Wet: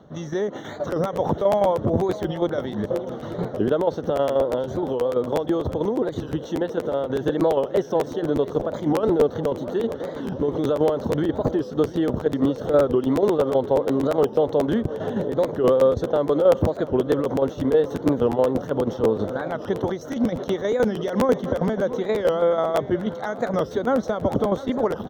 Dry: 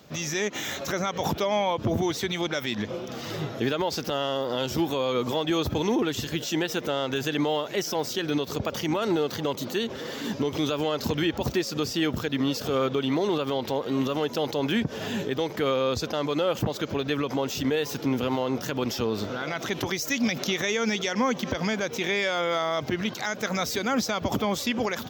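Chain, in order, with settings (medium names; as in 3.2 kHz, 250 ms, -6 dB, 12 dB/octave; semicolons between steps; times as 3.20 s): dynamic bell 520 Hz, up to +7 dB, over -41 dBFS, Q 1.9; 4.43–7.19 s: compression, threshold -22 dBFS, peak gain reduction 5.5 dB; boxcar filter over 18 samples; tremolo saw down 6.2 Hz, depth 60%; feedback delay 690 ms, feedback 41%, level -16.5 dB; crackling interface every 0.12 s, samples 512, repeat, from 0.91 s; warped record 45 rpm, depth 160 cents; trim +6 dB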